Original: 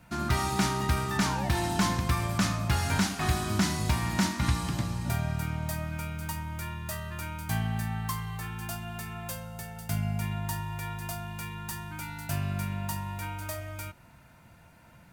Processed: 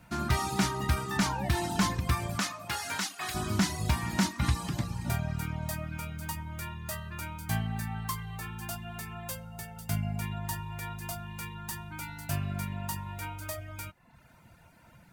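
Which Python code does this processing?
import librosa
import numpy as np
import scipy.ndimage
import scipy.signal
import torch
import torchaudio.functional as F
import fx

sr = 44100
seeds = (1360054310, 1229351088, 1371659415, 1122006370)

y = fx.highpass(x, sr, hz=fx.line((2.38, 420.0), (3.34, 1400.0)), slope=6, at=(2.38, 3.34), fade=0.02)
y = fx.dereverb_blind(y, sr, rt60_s=0.71)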